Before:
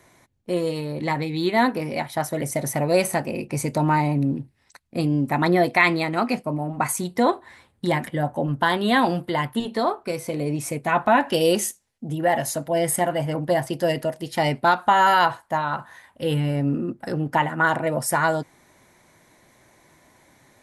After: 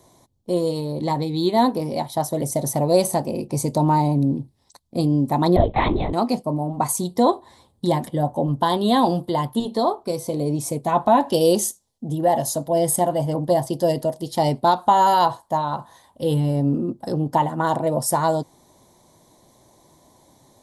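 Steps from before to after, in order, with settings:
0:05.56–0:06.13: linear-prediction vocoder at 8 kHz whisper
flat-topped bell 1,900 Hz −14.5 dB 1.3 octaves
level +2.5 dB

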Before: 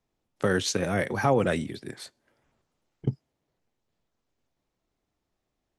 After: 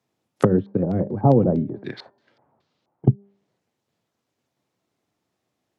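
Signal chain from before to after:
hum removal 199 Hz, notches 9
treble cut that deepens with the level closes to 330 Hz, closed at −25.5 dBFS
high-pass filter 100 Hz 24 dB per octave
0:00.57–0:03.07: auto-filter low-pass square 6.8 Hz → 1.6 Hz 890–4,200 Hz
boost into a limiter +14.5 dB
expander for the loud parts 1.5 to 1, over −24 dBFS
level −1.5 dB

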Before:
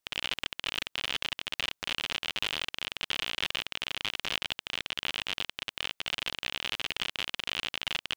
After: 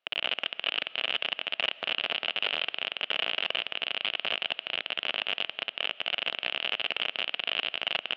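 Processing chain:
each half-wave held at its own peak
brickwall limiter −17.5 dBFS, peak gain reduction 8.5 dB
loudspeaker in its box 320–3,400 Hz, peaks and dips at 330 Hz −8 dB, 660 Hz +5 dB, 970 Hz −6 dB, 1,900 Hz −4 dB, 2,900 Hz +5 dB
on a send: convolution reverb RT60 1.9 s, pre-delay 85 ms, DRR 19 dB
on the sum: level +2.5 dB

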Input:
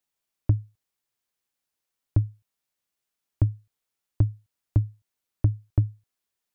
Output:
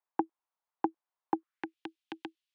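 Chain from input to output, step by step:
band-pass filter sweep 340 Hz → 1,200 Hz, 0:03.41–0:04.58
frequency shifter +20 Hz
change of speed 2.57×
level +8 dB

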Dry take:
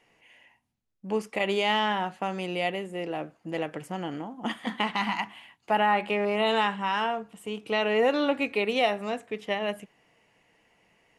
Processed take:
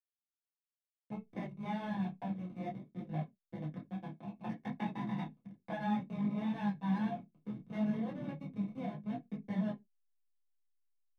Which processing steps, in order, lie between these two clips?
downward compressor 8 to 1, threshold −40 dBFS, peak gain reduction 20.5 dB
pair of resonant band-passes 1,200 Hz, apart 0.89 octaves
feedback delay with all-pass diffusion 520 ms, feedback 67%, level −14 dB
slack as between gear wheels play −45.5 dBFS
convolution reverb RT60 0.15 s, pre-delay 3 ms, DRR −0.5 dB
micro pitch shift up and down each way 22 cents
level +5 dB

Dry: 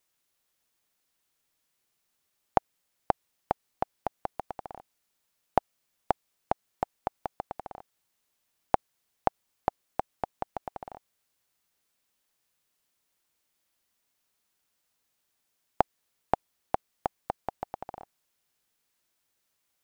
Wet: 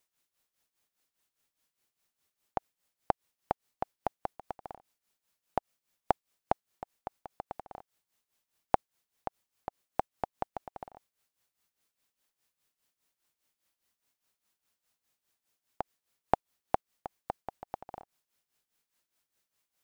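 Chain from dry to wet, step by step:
amplitude tremolo 4.9 Hz, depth 77%

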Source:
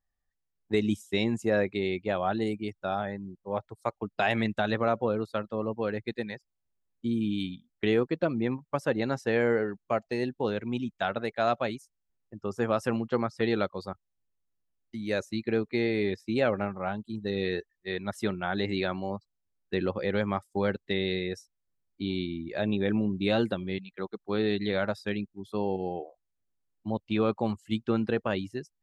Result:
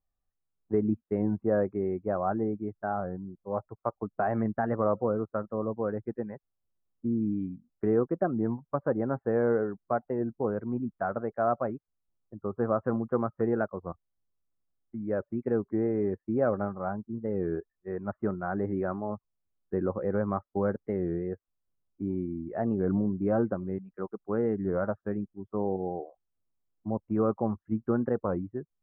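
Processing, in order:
Butterworth low-pass 1,400 Hz 36 dB per octave
notch filter 880 Hz, Q 12
wow of a warped record 33 1/3 rpm, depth 160 cents

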